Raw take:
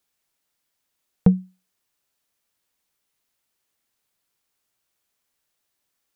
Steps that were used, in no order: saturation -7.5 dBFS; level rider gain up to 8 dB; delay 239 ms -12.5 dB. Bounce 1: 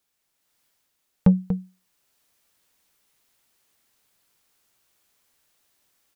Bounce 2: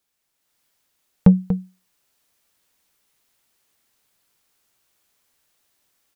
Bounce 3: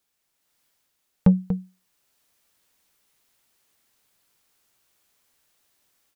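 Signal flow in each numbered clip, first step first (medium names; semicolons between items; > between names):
delay > level rider > saturation; delay > saturation > level rider; level rider > delay > saturation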